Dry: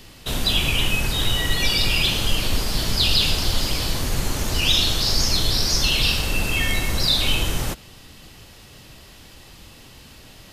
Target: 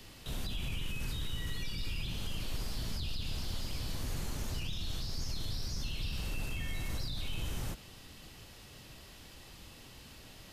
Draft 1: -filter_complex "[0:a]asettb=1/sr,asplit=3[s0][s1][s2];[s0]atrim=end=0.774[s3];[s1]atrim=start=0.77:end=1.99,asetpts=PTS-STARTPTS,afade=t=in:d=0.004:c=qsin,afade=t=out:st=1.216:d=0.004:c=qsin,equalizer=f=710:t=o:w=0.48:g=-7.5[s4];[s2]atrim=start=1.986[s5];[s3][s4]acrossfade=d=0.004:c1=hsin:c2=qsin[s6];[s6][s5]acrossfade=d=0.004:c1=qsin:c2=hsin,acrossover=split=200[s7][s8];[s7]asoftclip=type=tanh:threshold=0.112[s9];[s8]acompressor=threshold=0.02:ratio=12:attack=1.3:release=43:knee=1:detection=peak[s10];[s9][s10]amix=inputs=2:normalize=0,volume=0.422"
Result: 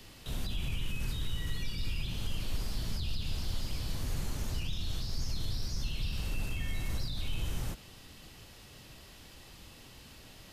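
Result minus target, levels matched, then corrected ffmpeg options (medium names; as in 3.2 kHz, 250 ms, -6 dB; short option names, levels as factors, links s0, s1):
saturation: distortion -5 dB
-filter_complex "[0:a]asettb=1/sr,asplit=3[s0][s1][s2];[s0]atrim=end=0.774[s3];[s1]atrim=start=0.77:end=1.99,asetpts=PTS-STARTPTS,afade=t=in:d=0.004:c=qsin,afade=t=out:st=1.216:d=0.004:c=qsin,equalizer=f=710:t=o:w=0.48:g=-7.5[s4];[s2]atrim=start=1.986[s5];[s3][s4]acrossfade=d=0.004:c1=hsin:c2=qsin[s6];[s6][s5]acrossfade=d=0.004:c1=qsin:c2=hsin,acrossover=split=200[s7][s8];[s7]asoftclip=type=tanh:threshold=0.0562[s9];[s8]acompressor=threshold=0.02:ratio=12:attack=1.3:release=43:knee=1:detection=peak[s10];[s9][s10]amix=inputs=2:normalize=0,volume=0.422"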